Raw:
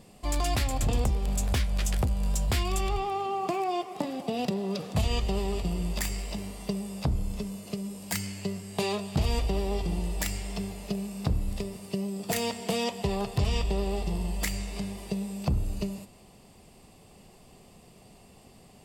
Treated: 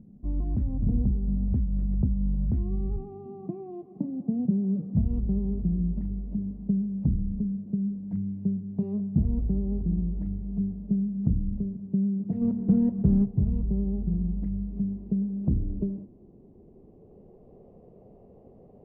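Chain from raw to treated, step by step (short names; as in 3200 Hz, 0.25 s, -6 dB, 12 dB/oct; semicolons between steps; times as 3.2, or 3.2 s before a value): 12.41–13.24 half-waves squared off; low-pass sweep 220 Hz -> 500 Hz, 14.63–17.67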